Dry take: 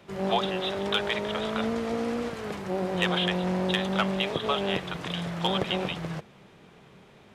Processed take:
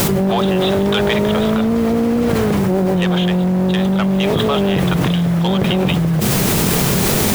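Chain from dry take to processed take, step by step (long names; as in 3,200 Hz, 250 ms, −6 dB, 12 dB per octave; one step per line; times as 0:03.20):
in parallel at −11 dB: bit-depth reduction 6 bits, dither triangular
on the sum: low-shelf EQ 480 Hz +10.5 dB
soft clipping −12 dBFS, distortion −20 dB
dynamic equaliser 150 Hz, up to +3 dB, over −32 dBFS, Q 1.2
envelope flattener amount 100%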